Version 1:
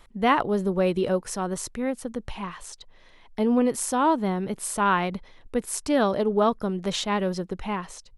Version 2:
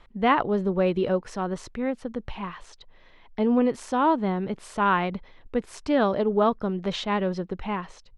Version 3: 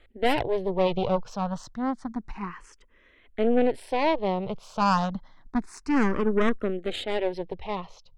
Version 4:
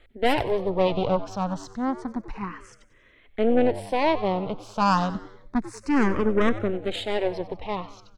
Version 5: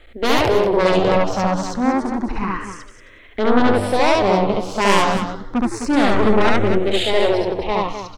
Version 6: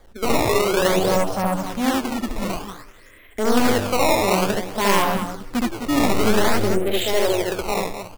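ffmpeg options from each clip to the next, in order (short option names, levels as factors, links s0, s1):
-af "lowpass=3700"
-filter_complex "[0:a]aeval=exprs='0.376*(cos(1*acos(clip(val(0)/0.376,-1,1)))-cos(1*PI/2))+0.0668*(cos(4*acos(clip(val(0)/0.376,-1,1)))-cos(4*PI/2))+0.0266*(cos(8*acos(clip(val(0)/0.376,-1,1)))-cos(8*PI/2))':c=same,asplit=2[s0][s1];[s1]afreqshift=0.29[s2];[s0][s2]amix=inputs=2:normalize=1"
-filter_complex "[0:a]asplit=5[s0][s1][s2][s3][s4];[s1]adelay=94,afreqshift=100,volume=0.168[s5];[s2]adelay=188,afreqshift=200,volume=0.0724[s6];[s3]adelay=282,afreqshift=300,volume=0.0309[s7];[s4]adelay=376,afreqshift=400,volume=0.0133[s8];[s0][s5][s6][s7][s8]amix=inputs=5:normalize=0,volume=1.19"
-af "aeval=exprs='0.398*sin(PI/2*3.16*val(0)/0.398)':c=same,equalizer=f=160:w=3.4:g=-8,aecho=1:1:69.97|256.6:1|0.355,volume=0.562"
-af "acrusher=samples=16:mix=1:aa=0.000001:lfo=1:lforange=25.6:lforate=0.54,volume=0.708"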